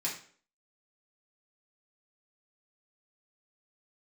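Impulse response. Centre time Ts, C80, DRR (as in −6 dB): 27 ms, 11.0 dB, −5.5 dB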